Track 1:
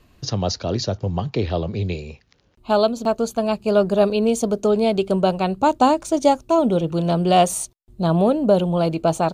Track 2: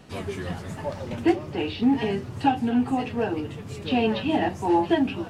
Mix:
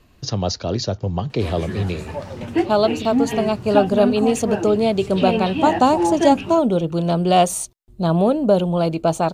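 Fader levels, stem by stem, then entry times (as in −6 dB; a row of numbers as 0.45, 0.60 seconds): +0.5, +1.5 decibels; 0.00, 1.30 seconds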